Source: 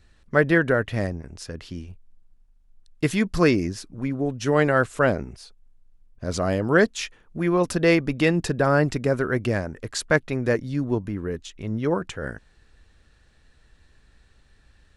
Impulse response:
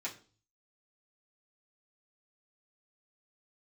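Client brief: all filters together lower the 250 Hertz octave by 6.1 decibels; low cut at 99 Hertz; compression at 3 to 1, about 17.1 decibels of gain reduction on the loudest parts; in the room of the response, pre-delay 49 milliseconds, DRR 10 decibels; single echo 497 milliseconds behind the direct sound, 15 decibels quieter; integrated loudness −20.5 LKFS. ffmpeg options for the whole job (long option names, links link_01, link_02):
-filter_complex "[0:a]highpass=99,equalizer=frequency=250:width_type=o:gain=-9,acompressor=threshold=-39dB:ratio=3,aecho=1:1:497:0.178,asplit=2[link_01][link_02];[1:a]atrim=start_sample=2205,adelay=49[link_03];[link_02][link_03]afir=irnorm=-1:irlink=0,volume=-11dB[link_04];[link_01][link_04]amix=inputs=2:normalize=0,volume=19dB"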